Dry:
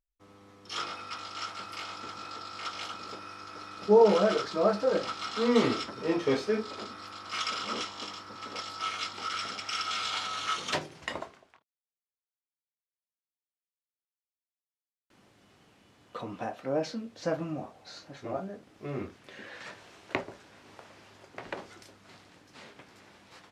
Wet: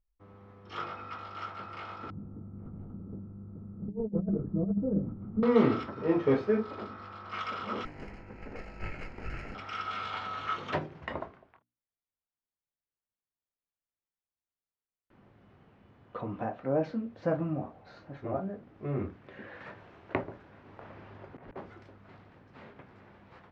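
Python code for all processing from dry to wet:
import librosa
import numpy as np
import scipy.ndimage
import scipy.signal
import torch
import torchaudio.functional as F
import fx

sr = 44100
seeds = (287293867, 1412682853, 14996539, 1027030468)

y = fx.chain(x, sr, fx.cvsd(bps=32000),
    fx.lowpass_res(hz=200.0, q=2.1),
    fx.over_compress(threshold_db=-32.0, ratio=-0.5), at=(2.1, 5.43))
y = fx.chain(y, sr, fx.lower_of_two(delay_ms=0.42),
    fx.peak_eq(hz=3700.0, db=-12.5, octaves=0.65), at=(7.85, 9.55))
y = fx.chain(y, sr, fx.over_compress(threshold_db=-51.0, ratio=-1.0),
    fx.air_absorb(metres=56.0), at=(20.81, 21.56))
y = scipy.signal.sosfilt(scipy.signal.butter(2, 1800.0, 'lowpass', fs=sr, output='sos'), y)
y = fx.low_shelf(y, sr, hz=170.0, db=10.0)
y = fx.hum_notches(y, sr, base_hz=60, count=5)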